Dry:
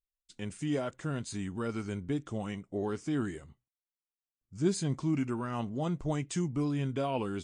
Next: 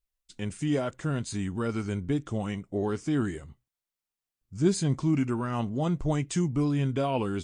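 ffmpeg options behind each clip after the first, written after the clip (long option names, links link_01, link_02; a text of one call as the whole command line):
ffmpeg -i in.wav -af "lowshelf=frequency=84:gain=7,volume=4dB" out.wav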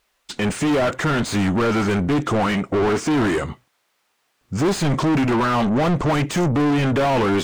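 ffmpeg -i in.wav -filter_complex "[0:a]asplit=2[link_01][link_02];[link_02]highpass=frequency=720:poles=1,volume=39dB,asoftclip=type=tanh:threshold=-11dB[link_03];[link_01][link_03]amix=inputs=2:normalize=0,lowpass=frequency=1600:poles=1,volume=-6dB" out.wav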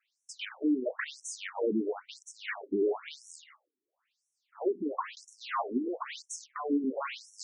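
ffmpeg -i in.wav -af "afftfilt=real='re*between(b*sr/1024,290*pow(7900/290,0.5+0.5*sin(2*PI*0.99*pts/sr))/1.41,290*pow(7900/290,0.5+0.5*sin(2*PI*0.99*pts/sr))*1.41)':imag='im*between(b*sr/1024,290*pow(7900/290,0.5+0.5*sin(2*PI*0.99*pts/sr))/1.41,290*pow(7900/290,0.5+0.5*sin(2*PI*0.99*pts/sr))*1.41)':win_size=1024:overlap=0.75,volume=-6.5dB" out.wav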